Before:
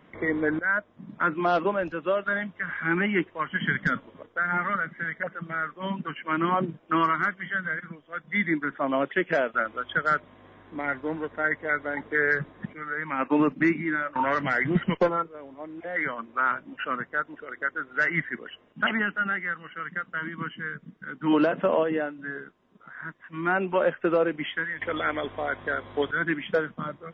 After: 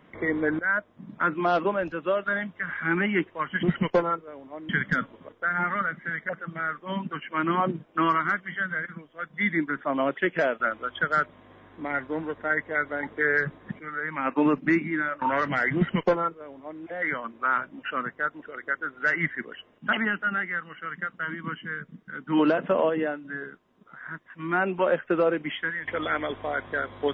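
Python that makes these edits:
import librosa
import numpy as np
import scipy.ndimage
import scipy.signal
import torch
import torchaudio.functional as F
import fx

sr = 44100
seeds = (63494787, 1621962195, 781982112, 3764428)

y = fx.edit(x, sr, fx.duplicate(start_s=14.7, length_s=1.06, to_s=3.63), tone=tone)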